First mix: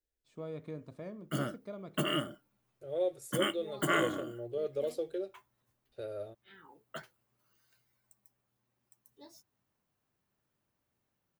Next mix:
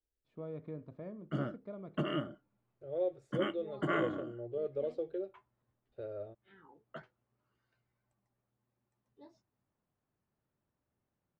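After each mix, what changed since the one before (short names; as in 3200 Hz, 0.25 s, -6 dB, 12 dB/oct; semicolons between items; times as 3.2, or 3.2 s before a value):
master: add tape spacing loss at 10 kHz 35 dB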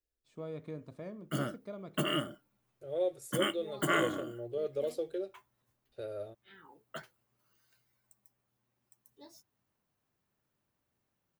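master: remove tape spacing loss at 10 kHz 35 dB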